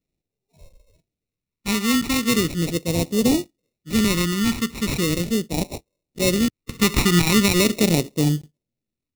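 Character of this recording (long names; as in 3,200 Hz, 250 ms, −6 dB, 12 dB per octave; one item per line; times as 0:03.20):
aliases and images of a low sample rate 1,600 Hz, jitter 0%
phaser sweep stages 2, 0.39 Hz, lowest notch 600–1,300 Hz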